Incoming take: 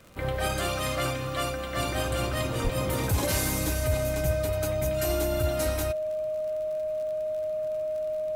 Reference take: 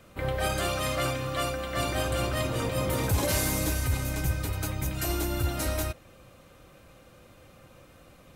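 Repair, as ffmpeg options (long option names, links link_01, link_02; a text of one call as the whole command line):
ffmpeg -i in.wav -filter_complex "[0:a]adeclick=threshold=4,bandreject=frequency=620:width=30,asplit=3[link_01][link_02][link_03];[link_01]afade=type=out:start_time=2.63:duration=0.02[link_04];[link_02]highpass=frequency=140:width=0.5412,highpass=frequency=140:width=1.3066,afade=type=in:start_time=2.63:duration=0.02,afade=type=out:start_time=2.75:duration=0.02[link_05];[link_03]afade=type=in:start_time=2.75:duration=0.02[link_06];[link_04][link_05][link_06]amix=inputs=3:normalize=0" out.wav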